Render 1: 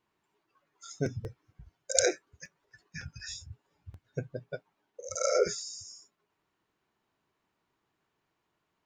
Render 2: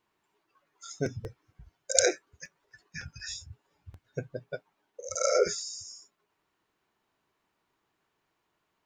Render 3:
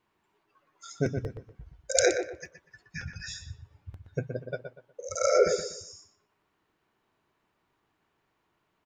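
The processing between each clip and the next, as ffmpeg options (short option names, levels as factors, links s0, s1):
-af "equalizer=f=130:w=0.51:g=-4,volume=1.33"
-filter_complex "[0:a]bass=f=250:g=3,treble=f=4000:g=-5,asplit=2[s0][s1];[s1]adelay=121,lowpass=f=2500:p=1,volume=0.447,asplit=2[s2][s3];[s3]adelay=121,lowpass=f=2500:p=1,volume=0.3,asplit=2[s4][s5];[s5]adelay=121,lowpass=f=2500:p=1,volume=0.3,asplit=2[s6][s7];[s7]adelay=121,lowpass=f=2500:p=1,volume=0.3[s8];[s0][s2][s4][s6][s8]amix=inputs=5:normalize=0,volume=1.26"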